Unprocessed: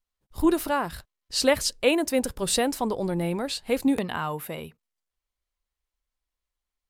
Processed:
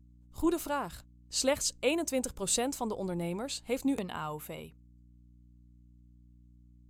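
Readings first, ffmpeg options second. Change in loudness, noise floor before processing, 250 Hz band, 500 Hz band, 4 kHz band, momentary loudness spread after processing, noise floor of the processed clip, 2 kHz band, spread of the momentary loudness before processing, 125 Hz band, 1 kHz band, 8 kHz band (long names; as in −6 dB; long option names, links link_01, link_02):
−7.0 dB, below −85 dBFS, −7.5 dB, −7.5 dB, −7.5 dB, 13 LU, −59 dBFS, −9.0 dB, 12 LU, −7.0 dB, −7.5 dB, −2.5 dB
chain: -af "superequalizer=11b=0.631:15b=2.24,aeval=exprs='val(0)+0.00355*(sin(2*PI*60*n/s)+sin(2*PI*2*60*n/s)/2+sin(2*PI*3*60*n/s)/3+sin(2*PI*4*60*n/s)/4+sin(2*PI*5*60*n/s)/5)':channel_layout=same,volume=-7.5dB"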